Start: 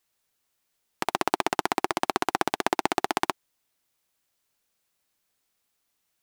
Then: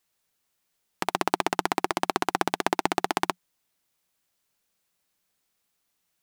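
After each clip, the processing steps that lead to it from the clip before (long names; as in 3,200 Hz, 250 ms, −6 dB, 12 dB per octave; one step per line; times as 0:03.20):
parametric band 180 Hz +6 dB 0.23 octaves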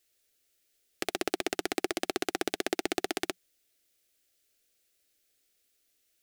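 brickwall limiter −9 dBFS, peak gain reduction 6.5 dB
phaser with its sweep stopped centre 400 Hz, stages 4
level +3.5 dB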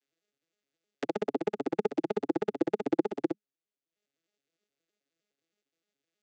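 vocoder with an arpeggio as carrier minor triad, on C#3, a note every 104 ms
transient designer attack +8 dB, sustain −11 dB
level −3 dB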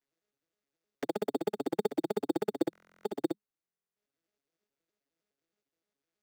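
in parallel at −4 dB: decimation without filtering 11×
on the sum: buffer that repeats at 0:02.71/0:03.64, samples 1,024, times 13
level −5.5 dB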